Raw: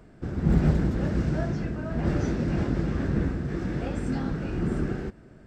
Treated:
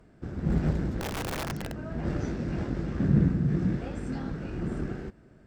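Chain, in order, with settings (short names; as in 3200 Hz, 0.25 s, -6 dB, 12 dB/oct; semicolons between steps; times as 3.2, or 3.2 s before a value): added harmonics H 4 -21 dB, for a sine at -9.5 dBFS; 1–1.84 wrapped overs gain 22 dB; 3–3.76 bell 160 Hz +13 dB 1.4 oct; gain -5 dB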